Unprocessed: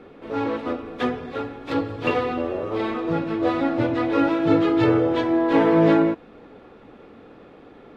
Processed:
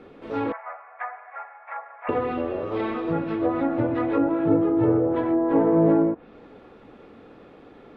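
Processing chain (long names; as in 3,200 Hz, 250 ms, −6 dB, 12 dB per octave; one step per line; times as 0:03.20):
treble cut that deepens with the level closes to 860 Hz, closed at −16 dBFS
0:00.52–0:02.09: Chebyshev band-pass filter 650–2,200 Hz, order 4
level −1.5 dB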